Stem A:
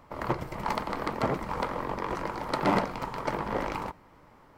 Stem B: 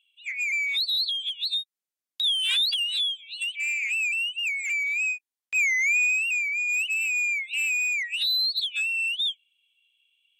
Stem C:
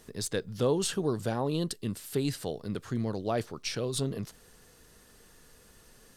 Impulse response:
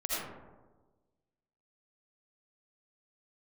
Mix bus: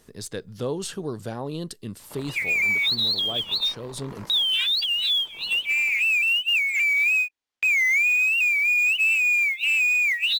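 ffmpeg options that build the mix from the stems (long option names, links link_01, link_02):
-filter_complex "[0:a]acompressor=threshold=-36dB:ratio=6,alimiter=level_in=5.5dB:limit=-24dB:level=0:latency=1:release=104,volume=-5.5dB,highshelf=frequency=4700:gain=10.5,adelay=2000,volume=-3dB[link_01];[1:a]lowpass=5000,acontrast=83,acrusher=bits=6:mode=log:mix=0:aa=0.000001,adelay=2100,volume=2dB[link_02];[2:a]volume=-1.5dB,asplit=2[link_03][link_04];[link_04]apad=whole_len=290117[link_05];[link_01][link_05]sidechaingate=range=-33dB:threshold=-56dB:ratio=16:detection=peak[link_06];[link_06][link_02][link_03]amix=inputs=3:normalize=0,alimiter=limit=-16.5dB:level=0:latency=1:release=456"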